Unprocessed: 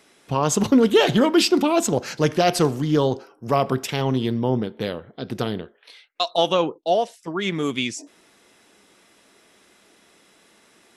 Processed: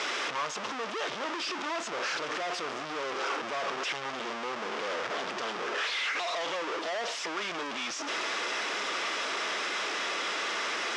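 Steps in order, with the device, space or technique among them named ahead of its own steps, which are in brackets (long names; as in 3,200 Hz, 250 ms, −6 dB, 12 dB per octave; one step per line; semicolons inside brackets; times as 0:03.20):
home computer beeper (sign of each sample alone; loudspeaker in its box 550–5,400 Hz, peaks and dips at 770 Hz −3 dB, 1,200 Hz +4 dB, 4,200 Hz −6 dB)
level −6.5 dB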